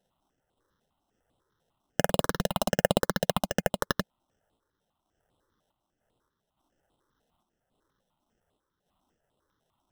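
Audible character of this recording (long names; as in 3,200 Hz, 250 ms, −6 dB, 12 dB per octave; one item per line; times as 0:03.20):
aliases and images of a low sample rate 2,300 Hz, jitter 0%
sample-and-hold tremolo
notches that jump at a steady rate 10 Hz 310–5,900 Hz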